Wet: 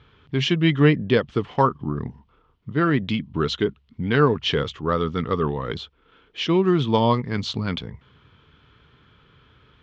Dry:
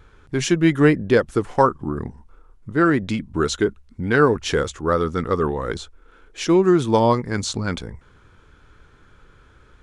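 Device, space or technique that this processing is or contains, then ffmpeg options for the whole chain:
guitar cabinet: -af "highpass=84,equalizer=f=140:t=q:w=4:g=4,equalizer=f=340:t=q:w=4:g=-5,equalizer=f=540:t=q:w=4:g=-5,equalizer=f=790:t=q:w=4:g=-4,equalizer=f=1.5k:t=q:w=4:g=-6,equalizer=f=3.1k:t=q:w=4:g=8,lowpass=f=4.4k:w=0.5412,lowpass=f=4.4k:w=1.3066"

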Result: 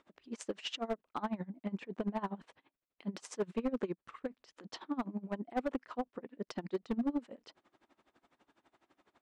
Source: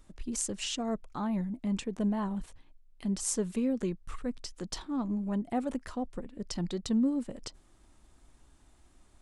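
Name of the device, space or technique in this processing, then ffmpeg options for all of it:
helicopter radio: -af "highpass=310,lowpass=2.9k,aeval=exprs='val(0)*pow(10,-22*(0.5-0.5*cos(2*PI*12*n/s))/20)':c=same,asoftclip=type=hard:threshold=-33dB,volume=5.5dB"

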